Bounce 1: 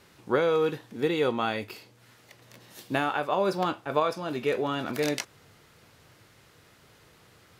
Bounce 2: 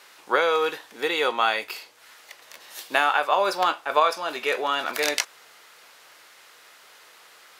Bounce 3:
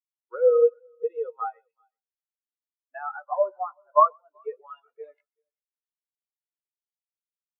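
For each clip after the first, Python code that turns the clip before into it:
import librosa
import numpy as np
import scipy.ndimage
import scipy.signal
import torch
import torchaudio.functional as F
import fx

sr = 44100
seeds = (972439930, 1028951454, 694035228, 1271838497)

y1 = scipy.signal.sosfilt(scipy.signal.butter(2, 760.0, 'highpass', fs=sr, output='sos'), x)
y1 = F.gain(torch.from_numpy(y1), 9.0).numpy()
y2 = fx.echo_heads(y1, sr, ms=127, heads='first and third', feedback_pct=42, wet_db=-10.0)
y2 = fx.env_lowpass_down(y2, sr, base_hz=2700.0, full_db=-17.5)
y2 = fx.spectral_expand(y2, sr, expansion=4.0)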